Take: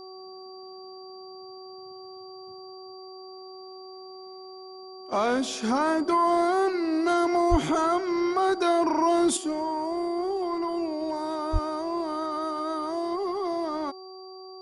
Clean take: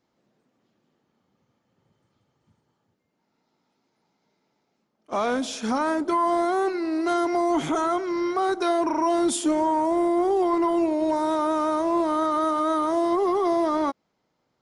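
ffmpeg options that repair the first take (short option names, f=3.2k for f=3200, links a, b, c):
-filter_complex "[0:a]bandreject=f=376.7:t=h:w=4,bandreject=f=753.4:t=h:w=4,bandreject=f=1.1301k:t=h:w=4,bandreject=f=4.7k:w=30,asplit=3[a][b][c];[a]afade=t=out:st=7.5:d=0.02[d];[b]highpass=f=140:w=0.5412,highpass=f=140:w=1.3066,afade=t=in:st=7.5:d=0.02,afade=t=out:st=7.62:d=0.02[e];[c]afade=t=in:st=7.62:d=0.02[f];[d][e][f]amix=inputs=3:normalize=0,asplit=3[g][h][i];[g]afade=t=out:st=11.52:d=0.02[j];[h]highpass=f=140:w=0.5412,highpass=f=140:w=1.3066,afade=t=in:st=11.52:d=0.02,afade=t=out:st=11.64:d=0.02[k];[i]afade=t=in:st=11.64:d=0.02[l];[j][k][l]amix=inputs=3:normalize=0,asetnsamples=n=441:p=0,asendcmd='9.37 volume volume 7dB',volume=0dB"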